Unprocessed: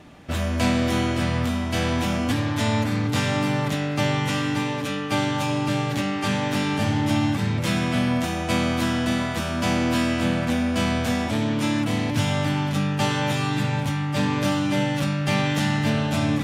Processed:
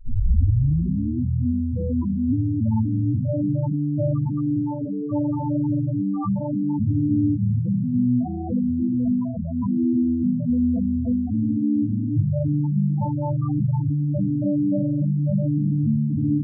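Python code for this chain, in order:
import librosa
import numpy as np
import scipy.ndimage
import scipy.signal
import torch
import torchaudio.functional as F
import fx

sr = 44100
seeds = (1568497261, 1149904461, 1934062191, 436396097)

y = fx.tape_start_head(x, sr, length_s=1.19)
y = fx.spec_topn(y, sr, count=4)
y = F.gain(torch.from_numpy(y), 4.5).numpy()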